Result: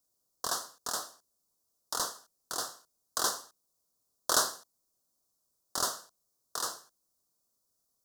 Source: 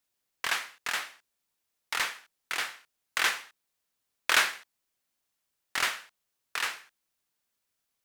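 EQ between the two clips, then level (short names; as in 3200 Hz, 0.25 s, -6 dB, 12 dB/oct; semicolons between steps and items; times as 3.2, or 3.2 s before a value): Chebyshev band-stop 970–5300 Hz, order 2; bell 860 Hz -9 dB 0.25 oct; +4.5 dB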